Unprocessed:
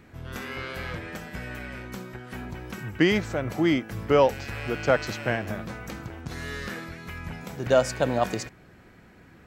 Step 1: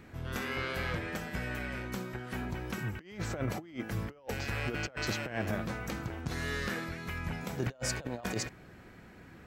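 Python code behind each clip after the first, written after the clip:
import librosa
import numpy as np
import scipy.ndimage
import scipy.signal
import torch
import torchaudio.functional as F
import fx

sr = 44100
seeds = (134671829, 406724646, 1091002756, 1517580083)

y = fx.over_compress(x, sr, threshold_db=-30.0, ratio=-0.5)
y = y * librosa.db_to_amplitude(-4.5)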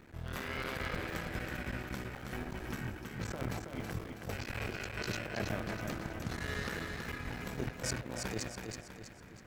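y = fx.cycle_switch(x, sr, every=3, mode='muted')
y = fx.echo_feedback(y, sr, ms=324, feedback_pct=43, wet_db=-5)
y = y * librosa.db_to_amplitude(-2.5)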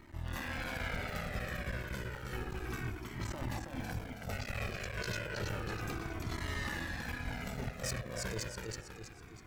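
y = np.clip(x, -10.0 ** (-32.5 / 20.0), 10.0 ** (-32.5 / 20.0))
y = fx.comb_cascade(y, sr, direction='falling', hz=0.31)
y = y * librosa.db_to_amplitude(5.0)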